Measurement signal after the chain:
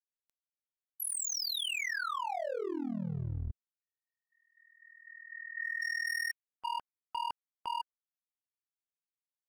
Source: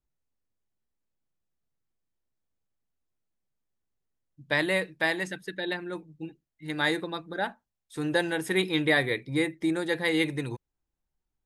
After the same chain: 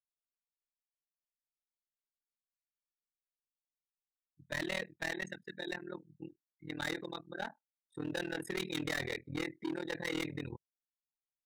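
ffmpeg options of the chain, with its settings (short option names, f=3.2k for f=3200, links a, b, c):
-af "afftdn=nr=26:nf=-42,adynamicequalizer=threshold=0.0158:dfrequency=3100:dqfactor=0.75:tfrequency=3100:tqfactor=0.75:attack=5:release=100:ratio=0.375:range=2:mode=boostabove:tftype=bell,asoftclip=type=hard:threshold=-25dB,tremolo=f=40:d=0.974,volume=-5dB"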